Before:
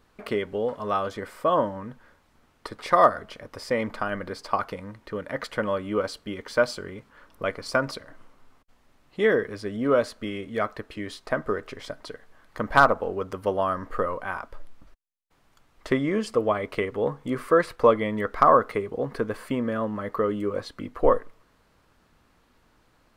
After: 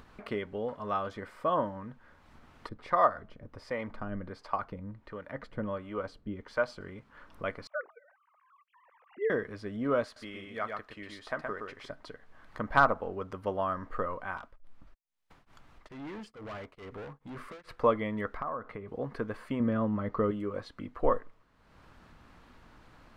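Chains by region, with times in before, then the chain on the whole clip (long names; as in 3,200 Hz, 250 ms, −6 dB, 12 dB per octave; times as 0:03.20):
0:02.69–0:06.81: spectral tilt −1.5 dB per octave + two-band tremolo in antiphase 1.4 Hz, crossover 480 Hz
0:07.67–0:09.30: three sine waves on the formant tracks + band-pass filter 360–2,900 Hz + high-frequency loss of the air 390 metres
0:10.04–0:11.90: low-shelf EQ 430 Hz −10 dB + single-tap delay 121 ms −4 dB
0:14.37–0:17.69: downward compressor 2.5 to 1, threshold −23 dBFS + gain into a clipping stage and back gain 32 dB + tremolo along a rectified sine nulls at 2.3 Hz
0:18.37–0:18.88: low-pass filter 1,800 Hz 6 dB per octave + parametric band 370 Hz −4.5 dB 0.37 octaves + downward compressor 2.5 to 1, threshold −31 dBFS
0:19.60–0:20.31: low-pass filter 6,900 Hz 24 dB per octave + low-shelf EQ 370 Hz +8.5 dB + notch filter 1,700 Hz, Q 16
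whole clip: low-pass filter 2,700 Hz 6 dB per octave; parametric band 440 Hz −4 dB 1.1 octaves; upward compression, threshold −39 dBFS; level −4.5 dB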